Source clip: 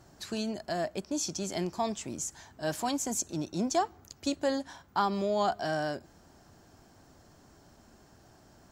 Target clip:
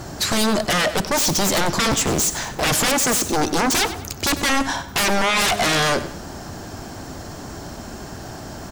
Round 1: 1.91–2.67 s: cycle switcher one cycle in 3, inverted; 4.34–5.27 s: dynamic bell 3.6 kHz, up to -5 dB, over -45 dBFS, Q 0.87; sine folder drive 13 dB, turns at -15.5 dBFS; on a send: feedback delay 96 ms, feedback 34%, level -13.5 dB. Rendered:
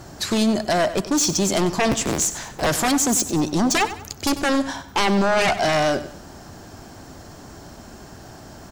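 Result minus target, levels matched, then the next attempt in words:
sine folder: distortion -15 dB
1.91–2.67 s: cycle switcher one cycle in 3, inverted; 4.34–5.27 s: dynamic bell 3.6 kHz, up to -5 dB, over -45 dBFS, Q 0.87; sine folder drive 20 dB, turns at -15.5 dBFS; on a send: feedback delay 96 ms, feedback 34%, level -13.5 dB

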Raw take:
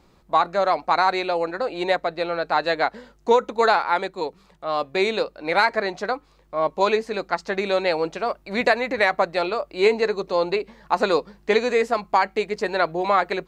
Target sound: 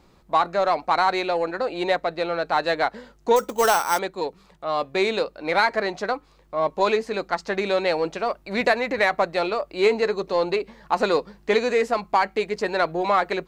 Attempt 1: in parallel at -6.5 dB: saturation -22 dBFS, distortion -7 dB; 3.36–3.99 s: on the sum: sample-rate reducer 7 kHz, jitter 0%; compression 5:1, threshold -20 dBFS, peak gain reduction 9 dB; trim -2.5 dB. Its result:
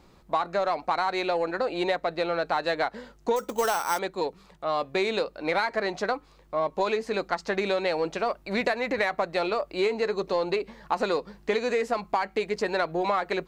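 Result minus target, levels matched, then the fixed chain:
compression: peak gain reduction +9 dB
in parallel at -6.5 dB: saturation -22 dBFS, distortion -7 dB; 3.36–3.99 s: on the sum: sample-rate reducer 7 kHz, jitter 0%; trim -2.5 dB

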